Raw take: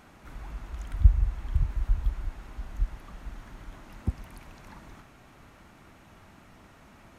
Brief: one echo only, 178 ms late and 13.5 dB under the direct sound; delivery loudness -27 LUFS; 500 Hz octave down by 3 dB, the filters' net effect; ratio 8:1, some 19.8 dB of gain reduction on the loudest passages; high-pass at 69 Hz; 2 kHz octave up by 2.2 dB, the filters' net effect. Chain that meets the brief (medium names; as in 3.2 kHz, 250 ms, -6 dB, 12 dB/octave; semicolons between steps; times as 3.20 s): high-pass 69 Hz; peaking EQ 500 Hz -4.5 dB; peaking EQ 2 kHz +3 dB; compression 8:1, threshold -36 dBFS; delay 178 ms -13.5 dB; trim +20.5 dB